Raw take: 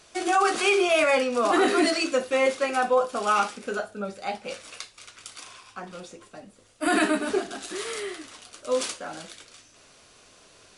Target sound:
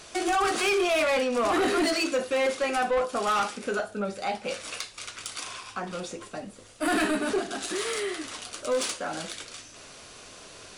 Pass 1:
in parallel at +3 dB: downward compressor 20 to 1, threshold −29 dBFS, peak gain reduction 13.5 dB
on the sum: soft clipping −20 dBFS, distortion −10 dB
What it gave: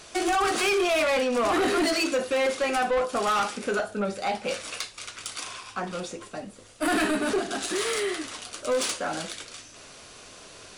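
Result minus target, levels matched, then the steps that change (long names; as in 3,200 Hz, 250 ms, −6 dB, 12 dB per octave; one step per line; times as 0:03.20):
downward compressor: peak gain reduction −9 dB
change: downward compressor 20 to 1, threshold −38.5 dBFS, peak gain reduction 22.5 dB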